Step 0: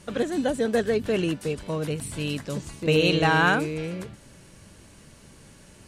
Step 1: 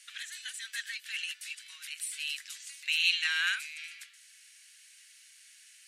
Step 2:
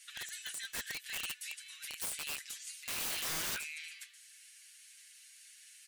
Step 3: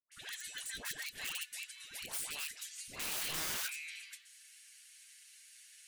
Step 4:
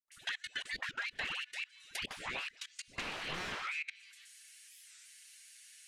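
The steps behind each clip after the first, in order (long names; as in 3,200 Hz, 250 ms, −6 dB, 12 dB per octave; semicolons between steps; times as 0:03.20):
Butterworth high-pass 1,800 Hz 36 dB per octave
high-shelf EQ 10,000 Hz +7.5 dB; comb filter 6.9 ms, depth 74%; wrap-around overflow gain 27.5 dB; level −4.5 dB
all-pass dispersion highs, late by 118 ms, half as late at 800 Hz; level −1 dB
output level in coarse steps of 23 dB; treble cut that deepens with the level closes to 2,600 Hz, closed at −44.5 dBFS; wow of a warped record 45 rpm, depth 250 cents; level +11.5 dB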